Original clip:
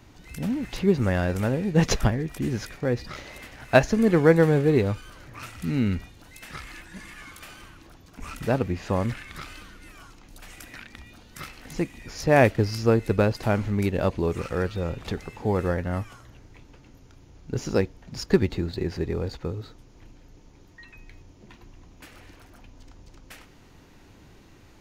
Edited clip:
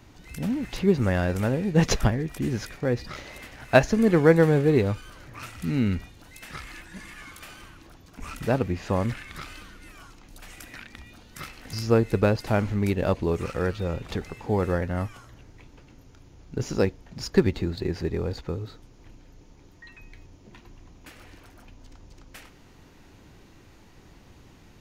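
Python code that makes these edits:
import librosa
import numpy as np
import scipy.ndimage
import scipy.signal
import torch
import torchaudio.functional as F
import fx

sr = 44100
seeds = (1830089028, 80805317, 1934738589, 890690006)

y = fx.edit(x, sr, fx.cut(start_s=11.73, length_s=0.96), tone=tone)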